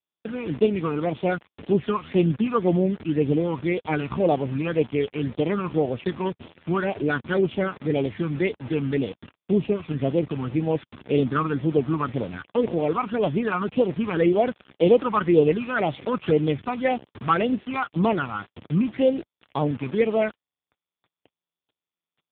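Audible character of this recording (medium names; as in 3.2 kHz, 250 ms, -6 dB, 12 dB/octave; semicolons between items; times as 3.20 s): a buzz of ramps at a fixed pitch in blocks of 8 samples; phasing stages 12, 1.9 Hz, lowest notch 560–1700 Hz; a quantiser's noise floor 6-bit, dither none; AMR-NB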